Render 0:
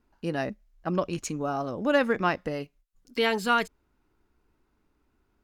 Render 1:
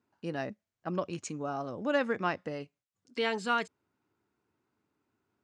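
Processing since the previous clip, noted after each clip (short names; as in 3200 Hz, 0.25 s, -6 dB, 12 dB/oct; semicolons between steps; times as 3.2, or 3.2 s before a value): elliptic band-pass 100–8200 Hz, stop band 40 dB; gain -5.5 dB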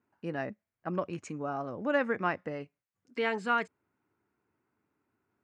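resonant high shelf 2800 Hz -7 dB, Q 1.5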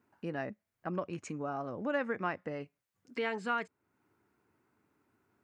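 compressor 1.5:1, threshold -52 dBFS, peak gain reduction 10.5 dB; gain +5 dB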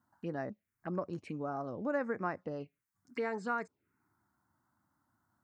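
envelope phaser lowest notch 420 Hz, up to 3100 Hz, full sweep at -33 dBFS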